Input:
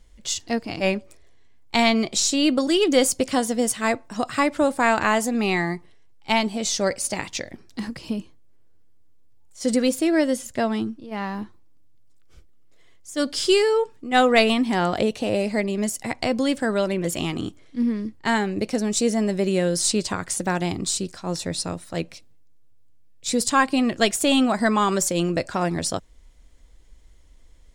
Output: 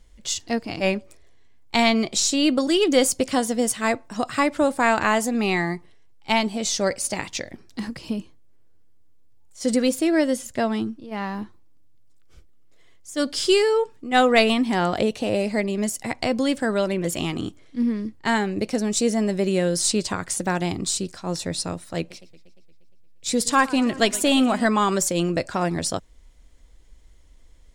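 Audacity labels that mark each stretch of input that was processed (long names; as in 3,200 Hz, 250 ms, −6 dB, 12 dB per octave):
21.980000	24.660000	feedback echo with a swinging delay time 117 ms, feedback 67%, depth 160 cents, level −19 dB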